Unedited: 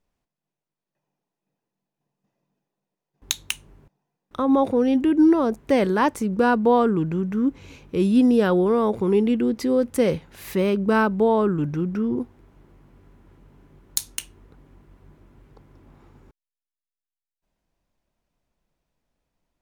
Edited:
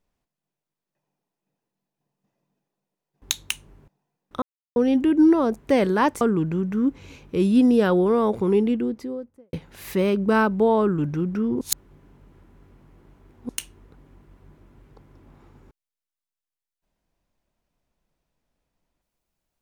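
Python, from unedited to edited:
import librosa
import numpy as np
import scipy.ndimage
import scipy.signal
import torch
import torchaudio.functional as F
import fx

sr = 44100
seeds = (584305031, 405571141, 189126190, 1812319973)

y = fx.studio_fade_out(x, sr, start_s=9.03, length_s=1.1)
y = fx.edit(y, sr, fx.silence(start_s=4.42, length_s=0.34),
    fx.cut(start_s=6.21, length_s=0.6),
    fx.reverse_span(start_s=12.21, length_s=1.88), tone=tone)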